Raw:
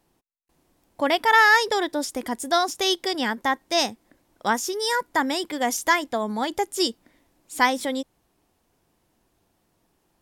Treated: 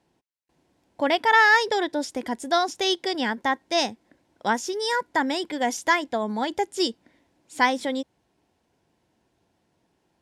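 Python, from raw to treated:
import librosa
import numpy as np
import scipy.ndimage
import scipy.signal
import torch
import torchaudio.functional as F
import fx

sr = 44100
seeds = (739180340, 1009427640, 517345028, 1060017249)

y = scipy.signal.sosfilt(scipy.signal.butter(2, 70.0, 'highpass', fs=sr, output='sos'), x)
y = fx.air_absorb(y, sr, metres=60.0)
y = fx.notch(y, sr, hz=1200.0, q=6.7)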